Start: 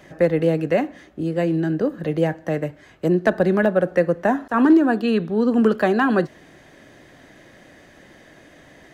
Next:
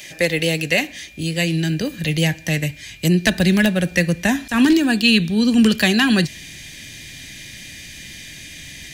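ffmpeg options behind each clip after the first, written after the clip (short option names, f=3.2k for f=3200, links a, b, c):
-af "asubboost=boost=8.5:cutoff=170,aexciter=amount=7.4:drive=8.5:freq=2k,aeval=exprs='val(0)+0.00891*sin(2*PI*2400*n/s)':c=same,volume=-2.5dB"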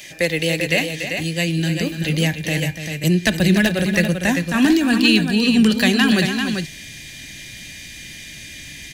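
-af "aecho=1:1:290|392:0.316|0.473,volume=-1dB"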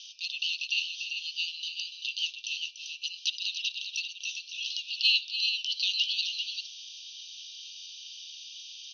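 -af "asuperpass=centerf=4100:order=20:qfactor=1.2,volume=-3.5dB"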